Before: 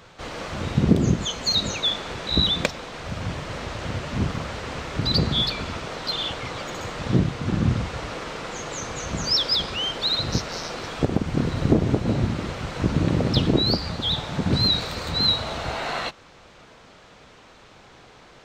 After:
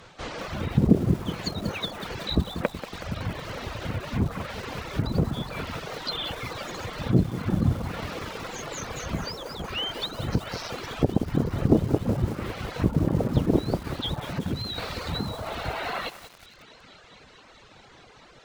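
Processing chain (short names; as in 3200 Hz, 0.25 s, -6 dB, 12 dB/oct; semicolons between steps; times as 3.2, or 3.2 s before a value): 14.29–14.78 compressor, threshold -24 dBFS, peak gain reduction 8 dB; treble ducked by the level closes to 1200 Hz, closed at -19.5 dBFS; thin delay 0.219 s, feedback 85%, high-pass 1800 Hz, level -16.5 dB; reverb removal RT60 1.3 s; lo-fi delay 0.186 s, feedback 80%, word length 6-bit, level -12 dB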